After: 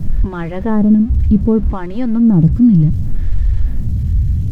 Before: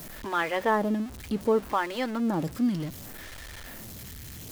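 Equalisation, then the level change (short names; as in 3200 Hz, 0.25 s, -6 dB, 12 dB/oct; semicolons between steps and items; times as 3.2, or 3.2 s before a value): tone controls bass +15 dB, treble +4 dB; RIAA curve playback; low shelf 420 Hz +4 dB; -2.0 dB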